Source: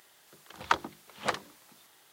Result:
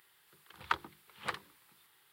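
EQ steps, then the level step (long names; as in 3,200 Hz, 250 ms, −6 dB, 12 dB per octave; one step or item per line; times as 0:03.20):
graphic EQ with 15 bands 250 Hz −10 dB, 630 Hz −12 dB, 6,300 Hz −12 dB
−4.0 dB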